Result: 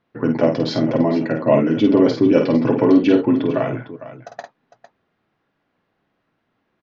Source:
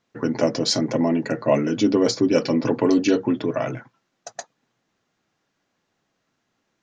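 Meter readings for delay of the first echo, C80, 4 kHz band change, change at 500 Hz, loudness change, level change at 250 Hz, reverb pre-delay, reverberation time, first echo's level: 50 ms, no reverb audible, −4.5 dB, +4.5 dB, +4.5 dB, +5.0 dB, no reverb audible, no reverb audible, −5.5 dB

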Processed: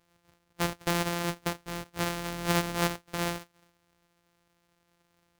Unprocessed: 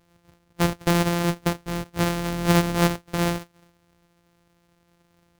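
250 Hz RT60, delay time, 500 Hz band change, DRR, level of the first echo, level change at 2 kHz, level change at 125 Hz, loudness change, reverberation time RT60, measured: no reverb audible, no echo audible, −7.5 dB, no reverb audible, no echo audible, −4.5 dB, −10.5 dB, −7.5 dB, no reverb audible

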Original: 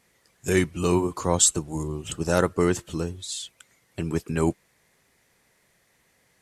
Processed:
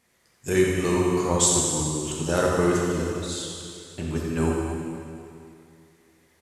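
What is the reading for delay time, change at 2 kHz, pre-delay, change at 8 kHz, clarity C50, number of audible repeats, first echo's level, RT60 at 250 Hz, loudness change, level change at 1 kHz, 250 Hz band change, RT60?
86 ms, +1.5 dB, 8 ms, +1.0 dB, −1.5 dB, 1, −8.0 dB, 2.5 s, +1.0 dB, +1.5 dB, +1.5 dB, 2.6 s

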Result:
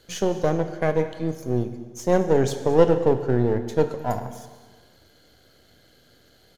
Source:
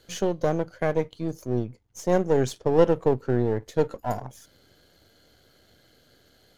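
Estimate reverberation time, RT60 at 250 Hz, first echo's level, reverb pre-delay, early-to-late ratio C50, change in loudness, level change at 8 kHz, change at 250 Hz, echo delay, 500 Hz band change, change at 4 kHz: 1.5 s, 1.5 s, −19.5 dB, 21 ms, 10.0 dB, +2.5 dB, +2.5 dB, +2.5 dB, 217 ms, +2.5 dB, +2.5 dB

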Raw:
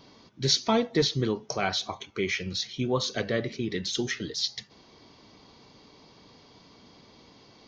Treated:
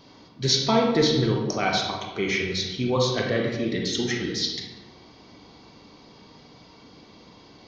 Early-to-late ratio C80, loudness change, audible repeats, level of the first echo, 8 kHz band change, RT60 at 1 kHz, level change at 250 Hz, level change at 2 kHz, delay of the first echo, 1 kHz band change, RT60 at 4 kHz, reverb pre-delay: 5.0 dB, +4.0 dB, no echo audible, no echo audible, +2.0 dB, 1.1 s, +5.0 dB, +4.5 dB, no echo audible, +5.0 dB, 0.75 s, 33 ms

